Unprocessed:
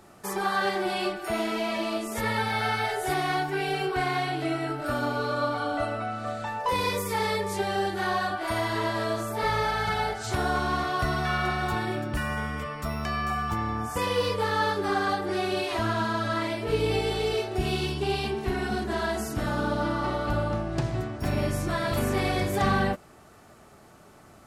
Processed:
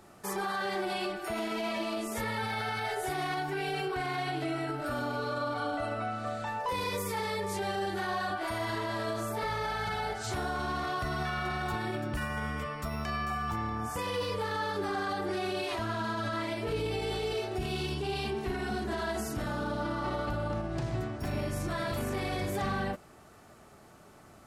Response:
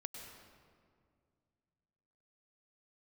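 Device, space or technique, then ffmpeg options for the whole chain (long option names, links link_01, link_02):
clipper into limiter: -af "asoftclip=type=hard:threshold=-16.5dB,alimiter=limit=-22.5dB:level=0:latency=1:release=33,volume=-2.5dB"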